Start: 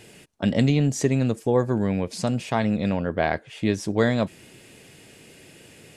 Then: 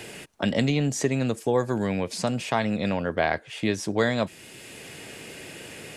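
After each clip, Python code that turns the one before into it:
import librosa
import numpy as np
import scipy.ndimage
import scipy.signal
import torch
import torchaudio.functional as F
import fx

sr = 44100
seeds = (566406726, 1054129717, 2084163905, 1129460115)

y = fx.low_shelf(x, sr, hz=410.0, db=-7.5)
y = fx.band_squash(y, sr, depth_pct=40)
y = F.gain(torch.from_numpy(y), 2.0).numpy()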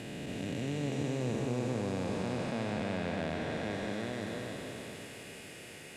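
y = fx.spec_blur(x, sr, span_ms=1150.0)
y = y + 10.0 ** (-4.5 / 20.0) * np.pad(y, (int(285 * sr / 1000.0), 0))[:len(y)]
y = F.gain(torch.from_numpy(y), -6.0).numpy()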